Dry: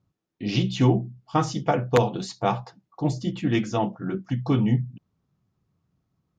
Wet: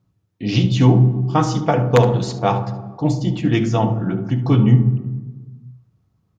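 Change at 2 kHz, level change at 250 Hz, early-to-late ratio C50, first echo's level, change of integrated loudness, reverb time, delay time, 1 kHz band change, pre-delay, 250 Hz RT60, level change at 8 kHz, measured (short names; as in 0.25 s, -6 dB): +4.5 dB, +7.0 dB, 10.0 dB, -14.5 dB, +7.5 dB, 1.3 s, 71 ms, +5.5 dB, 3 ms, 1.6 s, n/a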